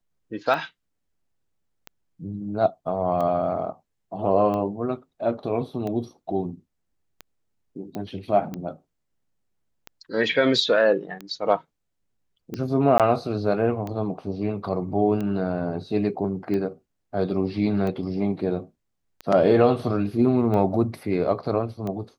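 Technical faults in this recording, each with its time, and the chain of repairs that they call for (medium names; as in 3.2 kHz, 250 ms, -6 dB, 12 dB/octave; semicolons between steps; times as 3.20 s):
tick 45 rpm -19 dBFS
7.95 s: pop -20 dBFS
12.98–13.00 s: dropout 17 ms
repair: de-click; interpolate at 12.98 s, 17 ms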